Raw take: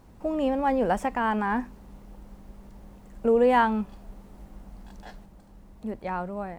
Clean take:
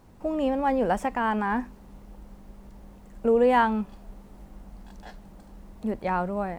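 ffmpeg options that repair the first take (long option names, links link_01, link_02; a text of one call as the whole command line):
ffmpeg -i in.wav -af "bandreject=frequency=54.6:width_type=h:width=4,bandreject=frequency=109.2:width_type=h:width=4,bandreject=frequency=163.8:width_type=h:width=4,bandreject=frequency=218.4:width_type=h:width=4,bandreject=frequency=273:width_type=h:width=4,asetnsamples=nb_out_samples=441:pad=0,asendcmd='5.25 volume volume 4.5dB',volume=0dB" out.wav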